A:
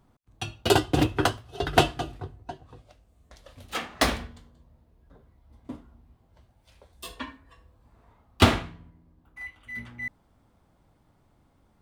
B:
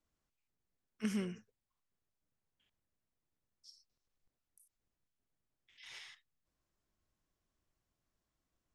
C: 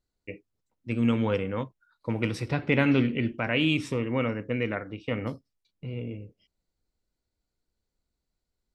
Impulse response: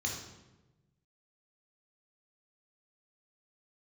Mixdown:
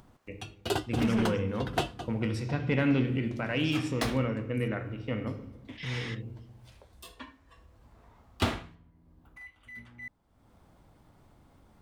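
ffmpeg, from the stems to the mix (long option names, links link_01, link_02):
-filter_complex "[0:a]acompressor=mode=upward:threshold=-37dB:ratio=2.5,volume=-9dB[link_01];[1:a]asplit=2[link_02][link_03];[link_03]highpass=frequency=720:poles=1,volume=27dB,asoftclip=type=tanh:threshold=-19.5dB[link_04];[link_02][link_04]amix=inputs=2:normalize=0,lowpass=frequency=1100:poles=1,volume=-6dB,asoftclip=type=tanh:threshold=-31dB,volume=2.5dB[link_05];[2:a]volume=-3dB,asplit=2[link_06][link_07];[link_07]volume=-10.5dB[link_08];[3:a]atrim=start_sample=2205[link_09];[link_08][link_09]afir=irnorm=-1:irlink=0[link_10];[link_01][link_05][link_06][link_10]amix=inputs=4:normalize=0,asoftclip=type=tanh:threshold=-14.5dB"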